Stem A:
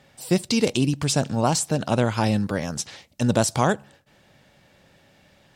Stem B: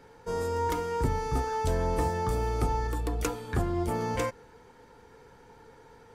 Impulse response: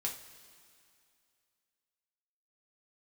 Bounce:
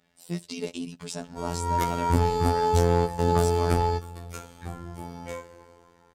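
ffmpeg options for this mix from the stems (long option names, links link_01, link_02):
-filter_complex "[0:a]aecho=1:1:4.7:0.51,volume=-10.5dB,asplit=2[link_01][link_02];[1:a]dynaudnorm=framelen=260:gausssize=5:maxgain=9dB,adelay=1100,volume=0.5dB,asplit=2[link_03][link_04];[link_04]volume=-14.5dB[link_05];[link_02]apad=whole_len=319409[link_06];[link_03][link_06]sidechaingate=range=-33dB:threshold=-57dB:ratio=16:detection=peak[link_07];[2:a]atrim=start_sample=2205[link_08];[link_05][link_08]afir=irnorm=-1:irlink=0[link_09];[link_01][link_07][link_09]amix=inputs=3:normalize=0,asoftclip=type=hard:threshold=-11.5dB,afftfilt=real='hypot(re,im)*cos(PI*b)':imag='0':win_size=2048:overlap=0.75"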